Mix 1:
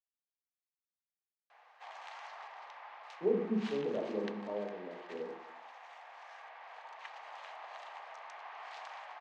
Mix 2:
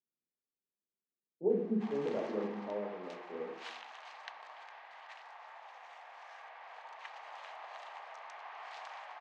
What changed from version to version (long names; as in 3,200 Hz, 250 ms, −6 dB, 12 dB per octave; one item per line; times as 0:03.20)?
speech: entry −1.80 s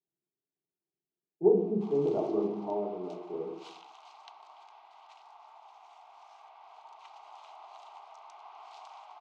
speech +11.0 dB
master: add phaser with its sweep stopped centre 350 Hz, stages 8